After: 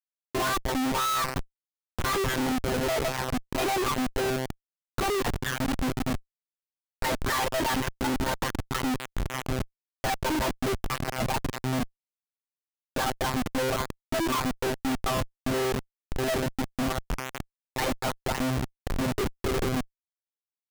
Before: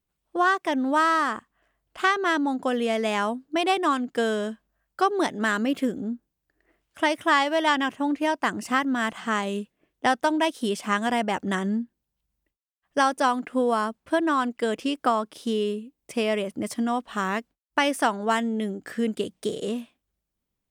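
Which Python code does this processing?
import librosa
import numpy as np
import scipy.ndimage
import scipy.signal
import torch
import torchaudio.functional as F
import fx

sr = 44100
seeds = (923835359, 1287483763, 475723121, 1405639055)

y = fx.lpc_monotone(x, sr, seeds[0], pitch_hz=130.0, order=16)
y = fx.schmitt(y, sr, flips_db=-32.5)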